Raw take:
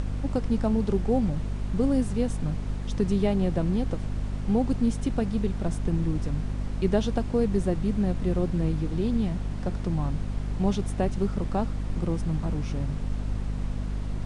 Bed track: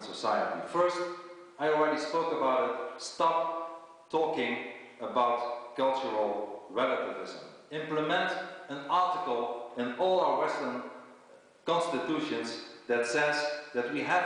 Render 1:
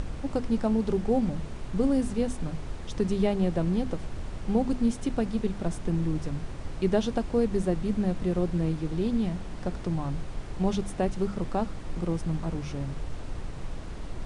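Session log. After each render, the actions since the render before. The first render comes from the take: hum notches 50/100/150/200/250 Hz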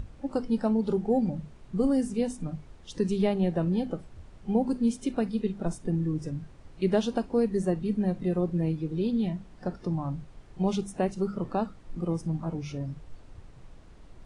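noise print and reduce 14 dB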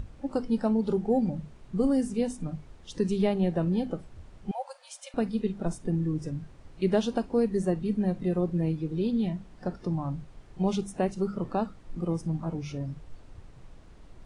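4.51–5.14 s: brick-wall FIR high-pass 520 Hz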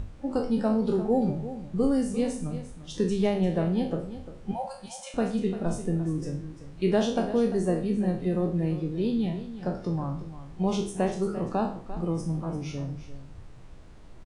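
spectral sustain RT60 0.47 s; delay 346 ms -13 dB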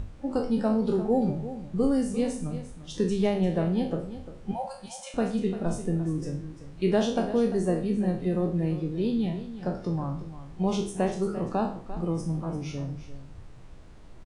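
no audible change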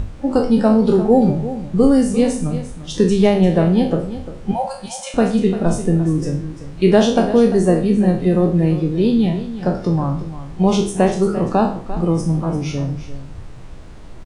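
trim +11.5 dB

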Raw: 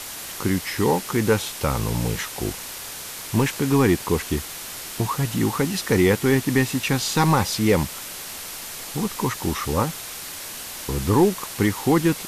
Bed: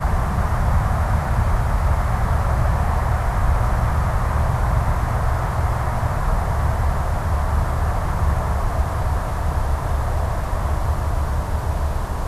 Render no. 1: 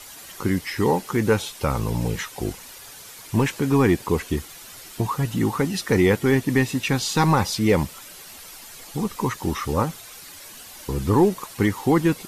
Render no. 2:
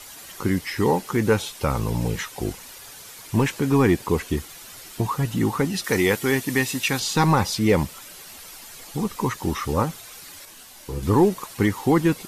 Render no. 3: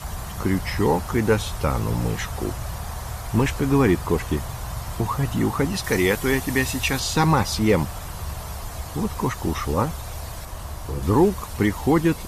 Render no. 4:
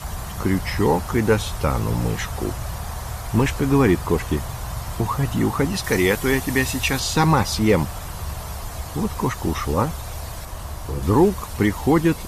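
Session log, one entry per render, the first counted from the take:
noise reduction 10 dB, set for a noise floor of -35 dBFS
5.84–7.00 s: tilt EQ +2 dB/octave; 10.45–11.03 s: detune thickener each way 26 cents
add bed -12.5 dB
trim +1.5 dB

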